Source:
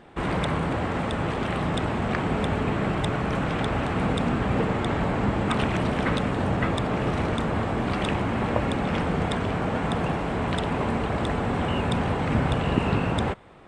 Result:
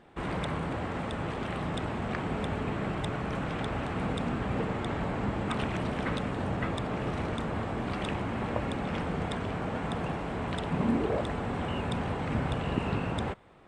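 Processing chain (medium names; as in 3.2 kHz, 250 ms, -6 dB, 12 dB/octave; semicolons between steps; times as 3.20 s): 10.72–11.20 s: peaking EQ 150 Hz -> 570 Hz +13 dB 0.64 oct; trim -7 dB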